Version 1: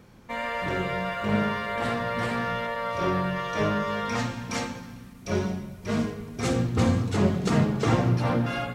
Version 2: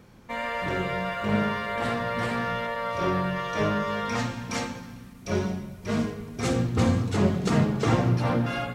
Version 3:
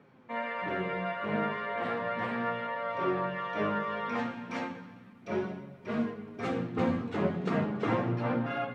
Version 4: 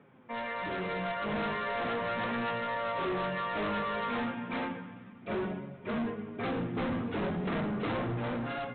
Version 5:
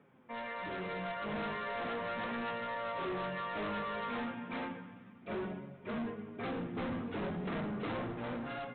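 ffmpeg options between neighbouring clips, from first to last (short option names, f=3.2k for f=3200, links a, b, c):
-af anull
-filter_complex "[0:a]acrossover=split=150 3100:gain=0.0891 1 0.0891[a][b][c];[a][b][c]amix=inputs=3:normalize=0,flanger=delay=7:depth=5.9:regen=39:speed=0.35:shape=triangular"
-af "aresample=8000,asoftclip=type=hard:threshold=-33dB,aresample=44100,dynaudnorm=f=370:g=5:m=3dB"
-af "bandreject=f=60:t=h:w=6,bandreject=f=120:t=h:w=6,volume=-5dB"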